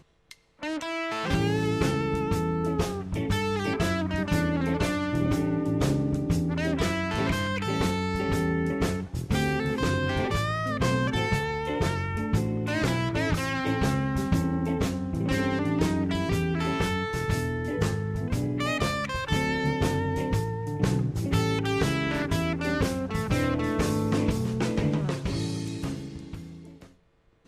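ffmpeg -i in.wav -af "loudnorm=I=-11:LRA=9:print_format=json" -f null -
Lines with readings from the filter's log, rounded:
"input_i" : "-27.5",
"input_tp" : "-10.6",
"input_lra" : "3.2",
"input_thresh" : "-37.9",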